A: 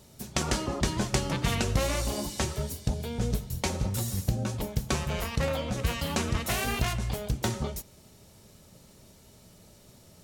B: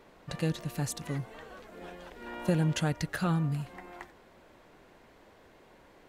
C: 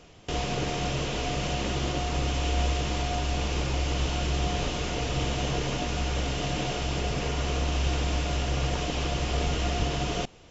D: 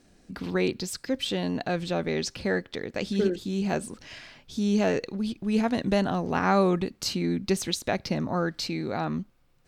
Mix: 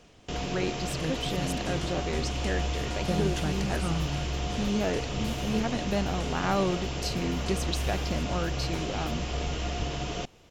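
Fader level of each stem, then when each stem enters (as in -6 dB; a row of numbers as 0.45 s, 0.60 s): -16.0 dB, -3.5 dB, -4.0 dB, -5.0 dB; 1.30 s, 0.60 s, 0.00 s, 0.00 s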